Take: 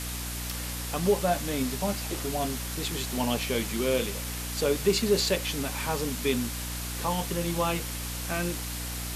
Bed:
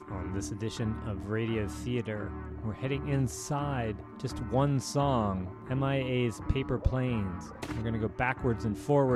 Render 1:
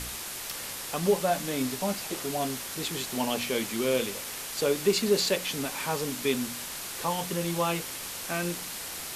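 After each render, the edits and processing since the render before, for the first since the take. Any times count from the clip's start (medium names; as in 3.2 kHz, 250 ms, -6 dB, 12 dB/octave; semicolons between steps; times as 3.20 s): de-hum 60 Hz, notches 5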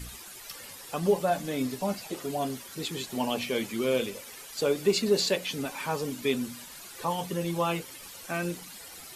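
noise reduction 12 dB, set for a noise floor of -38 dBFS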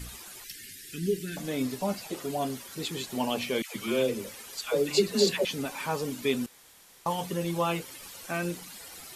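0.44–1.37 s: elliptic band-stop 380–1700 Hz; 3.62–5.45 s: phase dispersion lows, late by 143 ms, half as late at 700 Hz; 6.46–7.06 s: room tone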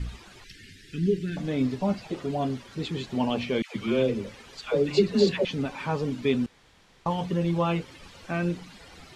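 low-pass 4 kHz 12 dB/octave; bass shelf 220 Hz +11.5 dB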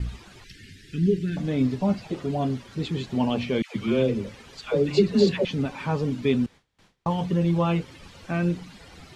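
gate with hold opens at -46 dBFS; peaking EQ 110 Hz +5 dB 2.6 oct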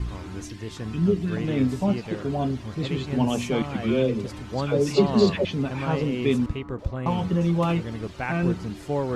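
add bed -1 dB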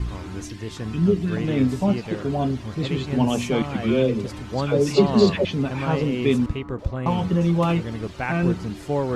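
trim +2.5 dB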